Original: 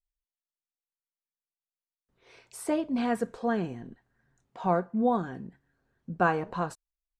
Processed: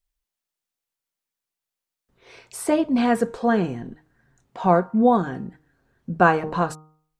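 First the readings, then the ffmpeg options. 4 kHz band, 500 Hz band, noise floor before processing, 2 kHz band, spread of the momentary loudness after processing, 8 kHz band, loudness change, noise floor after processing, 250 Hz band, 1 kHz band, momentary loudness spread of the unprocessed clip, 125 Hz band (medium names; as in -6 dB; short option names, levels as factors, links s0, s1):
+8.5 dB, +8.5 dB, under -85 dBFS, +8.5 dB, 17 LU, +8.5 dB, +8.5 dB, under -85 dBFS, +8.5 dB, +8.5 dB, 17 LU, +8.0 dB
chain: -af "bandreject=f=154.9:t=h:w=4,bandreject=f=309.8:t=h:w=4,bandreject=f=464.7:t=h:w=4,bandreject=f=619.6:t=h:w=4,bandreject=f=774.5:t=h:w=4,bandreject=f=929.4:t=h:w=4,bandreject=f=1084.3:t=h:w=4,bandreject=f=1239.2:t=h:w=4,bandreject=f=1394.1:t=h:w=4,volume=2.66"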